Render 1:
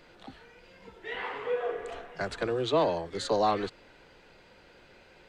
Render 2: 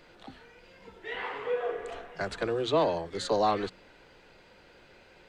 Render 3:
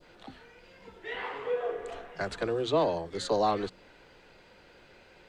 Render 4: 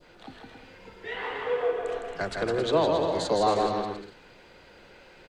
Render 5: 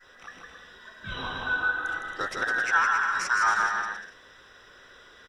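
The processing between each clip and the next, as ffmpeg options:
-af "bandreject=f=62.6:t=h:w=4,bandreject=f=125.2:t=h:w=4,bandreject=f=187.8:t=h:w=4,bandreject=f=250.4:t=h:w=4"
-af "adynamicequalizer=threshold=0.00562:dfrequency=2000:dqfactor=0.77:tfrequency=2000:tqfactor=0.77:attack=5:release=100:ratio=0.375:range=2.5:mode=cutabove:tftype=bell"
-af "aecho=1:1:160|272|350.4|405.3|443.7:0.631|0.398|0.251|0.158|0.1,volume=2dB"
-af "afftfilt=real='real(if(between(b,1,1012),(2*floor((b-1)/92)+1)*92-b,b),0)':imag='imag(if(between(b,1,1012),(2*floor((b-1)/92)+1)*92-b,b),0)*if(between(b,1,1012),-1,1)':win_size=2048:overlap=0.75"

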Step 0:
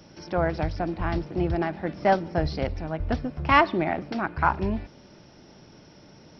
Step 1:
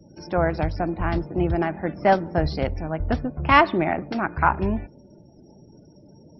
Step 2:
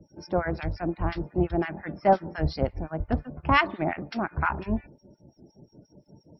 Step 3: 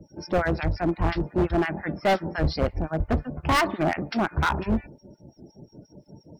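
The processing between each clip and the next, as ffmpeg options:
-af "afftdn=nr=34:nf=-48,volume=3dB"
-filter_complex "[0:a]acrossover=split=1200[a][b];[a]aeval=exprs='val(0)*(1-1/2+1/2*cos(2*PI*5.7*n/s))':c=same[c];[b]aeval=exprs='val(0)*(1-1/2-1/2*cos(2*PI*5.7*n/s))':c=same[d];[c][d]amix=inputs=2:normalize=0"
-af "asoftclip=type=hard:threshold=-23dB,volume=5.5dB"

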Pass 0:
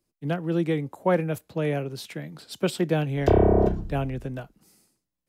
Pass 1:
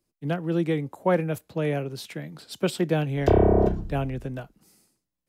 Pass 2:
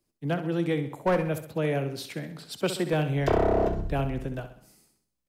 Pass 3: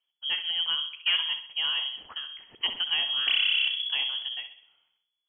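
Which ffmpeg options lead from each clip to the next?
-af anull
-filter_complex "[0:a]acrossover=split=390[a][b];[a]alimiter=limit=-24dB:level=0:latency=1[c];[b]aeval=exprs='clip(val(0),-1,0.075)':c=same[d];[c][d]amix=inputs=2:normalize=0,aecho=1:1:65|130|195|260|325:0.299|0.14|0.0659|0.031|0.0146"
-af "lowpass=f=2.9k:t=q:w=0.5098,lowpass=f=2.9k:t=q:w=0.6013,lowpass=f=2.9k:t=q:w=0.9,lowpass=f=2.9k:t=q:w=2.563,afreqshift=-3400,volume=-2dB"

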